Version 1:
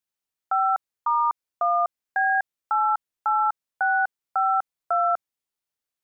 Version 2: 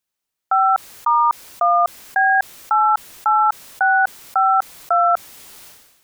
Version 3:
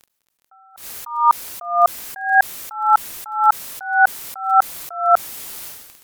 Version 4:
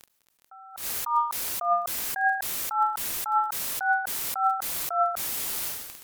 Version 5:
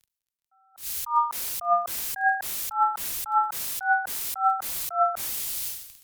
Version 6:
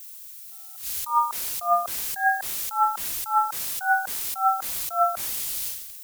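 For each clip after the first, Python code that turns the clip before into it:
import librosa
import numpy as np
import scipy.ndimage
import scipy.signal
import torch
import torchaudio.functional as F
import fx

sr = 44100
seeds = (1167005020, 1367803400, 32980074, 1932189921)

y1 = fx.sustainer(x, sr, db_per_s=51.0)
y1 = y1 * 10.0 ** (6.5 / 20.0)
y2 = fx.dmg_crackle(y1, sr, seeds[0], per_s=24.0, level_db=-31.0)
y2 = fx.peak_eq(y2, sr, hz=14000.0, db=6.0, octaves=1.0)
y2 = fx.attack_slew(y2, sr, db_per_s=110.0)
y2 = y2 * 10.0 ** (5.5 / 20.0)
y3 = fx.over_compress(y2, sr, threshold_db=-22.0, ratio=-1.0)
y3 = y3 * 10.0 ** (-3.0 / 20.0)
y4 = fx.band_widen(y3, sr, depth_pct=70)
y5 = fx.dmg_noise_colour(y4, sr, seeds[1], colour='violet', level_db=-43.0)
y5 = y5 * 10.0 ** (1.0 / 20.0)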